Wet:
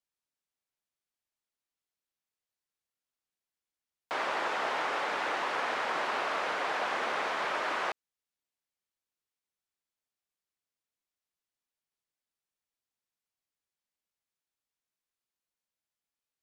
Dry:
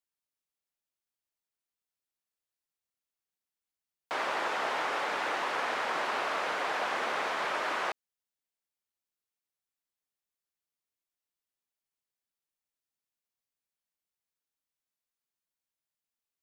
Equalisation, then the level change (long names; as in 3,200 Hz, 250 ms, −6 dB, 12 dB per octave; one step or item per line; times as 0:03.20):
high-shelf EQ 12,000 Hz −10 dB
0.0 dB